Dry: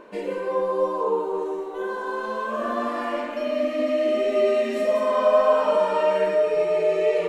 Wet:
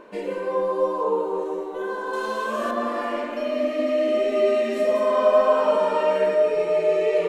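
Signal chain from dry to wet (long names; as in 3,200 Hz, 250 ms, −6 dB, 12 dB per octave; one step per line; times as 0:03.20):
0:02.13–0:02.71: high-shelf EQ 3,000 Hz +11.5 dB
feedback echo with a band-pass in the loop 186 ms, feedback 83%, band-pass 390 Hz, level −11.5 dB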